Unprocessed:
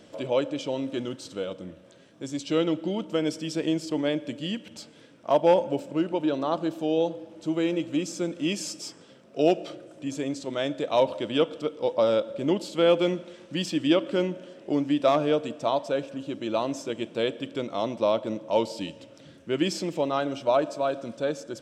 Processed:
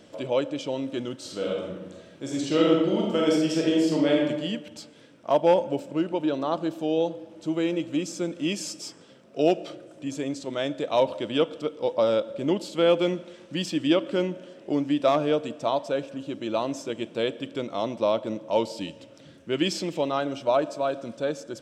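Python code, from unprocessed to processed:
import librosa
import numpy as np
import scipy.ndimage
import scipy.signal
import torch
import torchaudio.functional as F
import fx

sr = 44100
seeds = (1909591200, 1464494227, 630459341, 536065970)

y = fx.reverb_throw(x, sr, start_s=1.17, length_s=3.1, rt60_s=1.1, drr_db=-3.0)
y = fx.peak_eq(y, sr, hz=3300.0, db=4.0, octaves=1.2, at=(19.52, 20.12))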